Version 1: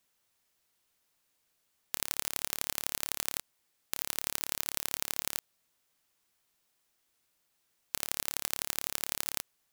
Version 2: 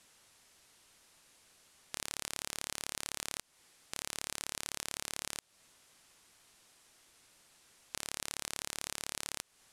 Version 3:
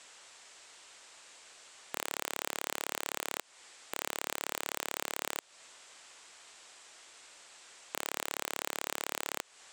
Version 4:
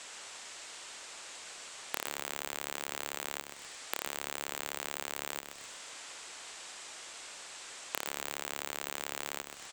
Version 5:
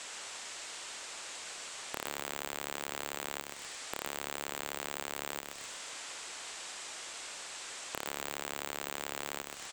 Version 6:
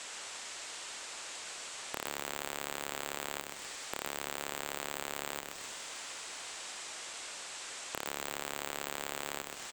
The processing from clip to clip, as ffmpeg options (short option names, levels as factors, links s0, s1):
-af "lowpass=f=11000:w=0.5412,lowpass=f=11000:w=1.3066,acompressor=threshold=0.00794:ratio=5,alimiter=level_in=1.58:limit=0.0631:level=0:latency=1:release=36,volume=0.631,volume=5.01"
-filter_complex "[0:a]lowpass=f=7800:t=q:w=3.5,acrossover=split=370 4500:gain=0.141 1 0.251[s0][s1][s2];[s0][s1][s2]amix=inputs=3:normalize=0,aeval=exprs='0.126*sin(PI/2*2*val(0)/0.126)':c=same,volume=1.12"
-filter_complex "[0:a]acompressor=threshold=0.0112:ratio=10,asplit=5[s0][s1][s2][s3][s4];[s1]adelay=126,afreqshift=-99,volume=0.398[s5];[s2]adelay=252,afreqshift=-198,volume=0.148[s6];[s3]adelay=378,afreqshift=-297,volume=0.0543[s7];[s4]adelay=504,afreqshift=-396,volume=0.0202[s8];[s0][s5][s6][s7][s8]amix=inputs=5:normalize=0,volume=2.37"
-af "asoftclip=type=tanh:threshold=0.0562,volume=1.41"
-af "aecho=1:1:343|686|1029|1372|1715:0.158|0.0888|0.0497|0.0278|0.0156"